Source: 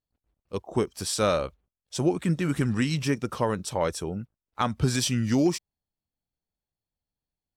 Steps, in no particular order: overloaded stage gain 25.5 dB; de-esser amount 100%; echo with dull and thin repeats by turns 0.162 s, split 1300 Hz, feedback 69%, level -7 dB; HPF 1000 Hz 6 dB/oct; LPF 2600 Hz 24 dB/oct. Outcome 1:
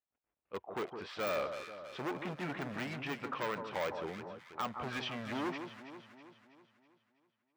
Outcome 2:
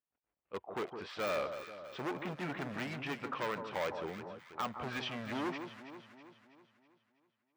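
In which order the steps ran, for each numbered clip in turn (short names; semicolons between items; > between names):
LPF > overloaded stage > echo with dull and thin repeats by turns > de-esser > HPF; LPF > overloaded stage > HPF > de-esser > echo with dull and thin repeats by turns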